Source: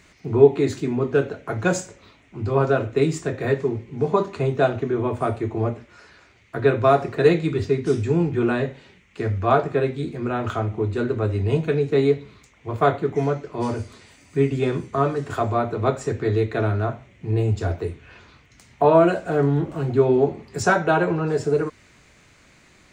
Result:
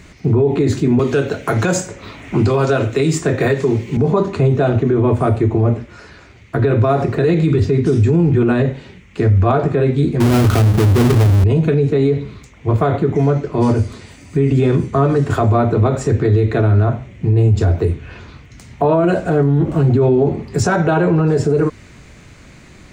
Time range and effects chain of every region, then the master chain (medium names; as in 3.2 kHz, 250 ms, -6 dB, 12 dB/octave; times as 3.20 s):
0.99–3.97 s: tilt EQ +2 dB/octave + three bands compressed up and down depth 70%
10.20–11.44 s: square wave that keeps the level + high-pass 47 Hz 24 dB/octave + bass shelf 140 Hz +6 dB
whole clip: bass shelf 360 Hz +9.5 dB; peak limiter -14 dBFS; trim +7.5 dB